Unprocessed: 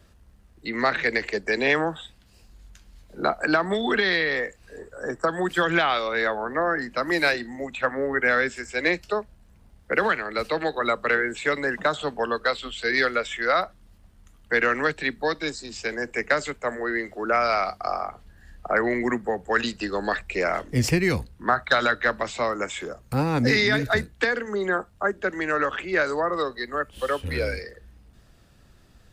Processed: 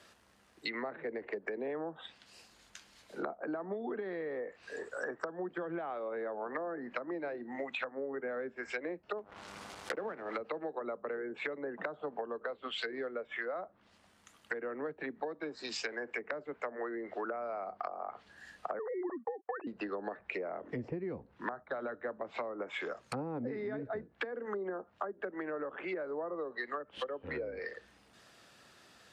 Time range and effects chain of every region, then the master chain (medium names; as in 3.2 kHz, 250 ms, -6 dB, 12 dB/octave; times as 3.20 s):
9.17–10.37 s: block-companded coder 3-bit + upward compressor, threshold -29 dBFS + mains buzz 100 Hz, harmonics 15, -54 dBFS -2 dB/octave
18.79–19.67 s: formants replaced by sine waves + gate -39 dBFS, range -37 dB + peaking EQ 1.1 kHz +4 dB 0.4 oct
whole clip: low-pass that closes with the level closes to 500 Hz, closed at -22.5 dBFS; frequency weighting A; compression 6:1, threshold -38 dBFS; trim +2.5 dB